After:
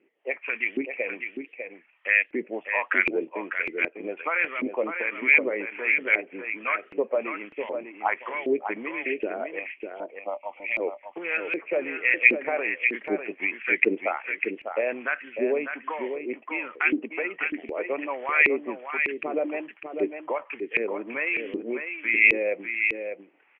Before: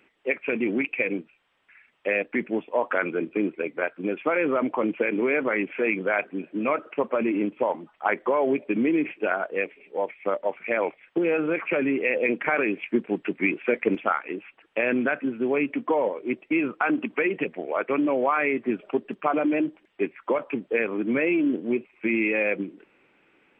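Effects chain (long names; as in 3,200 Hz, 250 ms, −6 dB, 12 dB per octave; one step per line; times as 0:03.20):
flat-topped bell 2,400 Hz +10.5 dB 1 octave
auto-filter band-pass saw up 1.3 Hz 330–2,500 Hz
0:09.59–0:10.80: phaser with its sweep stopped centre 440 Hz, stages 6
on a send: single-tap delay 599 ms −7 dB
on the sum: level +2 dB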